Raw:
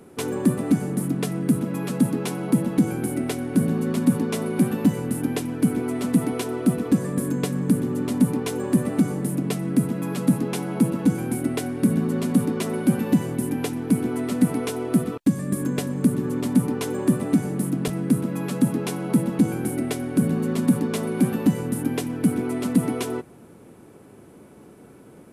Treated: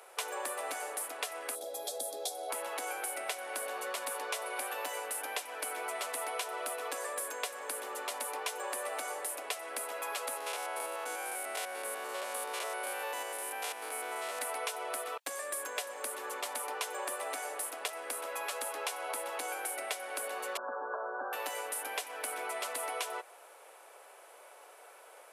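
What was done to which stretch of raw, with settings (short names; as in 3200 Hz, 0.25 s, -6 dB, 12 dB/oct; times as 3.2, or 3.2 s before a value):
1.55–2.5 spectral gain 830–3200 Hz -20 dB
10.37–14.39 stepped spectrum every 0.1 s
20.57–21.33 brick-wall FIR low-pass 1700 Hz
whole clip: steep high-pass 570 Hz 36 dB/oct; bell 2800 Hz +2 dB; compressor 4:1, threshold -36 dBFS; gain +2 dB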